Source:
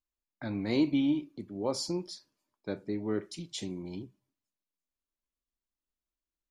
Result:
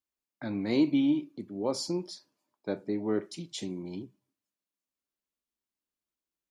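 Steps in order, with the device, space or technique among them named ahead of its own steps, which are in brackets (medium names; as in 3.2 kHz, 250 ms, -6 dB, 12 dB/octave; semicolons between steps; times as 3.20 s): filter by subtraction (in parallel: low-pass 220 Hz 12 dB/octave + polarity flip); 2.03–3.42 s: on the sum: peaking EQ 750 Hz +5 dB 1.1 oct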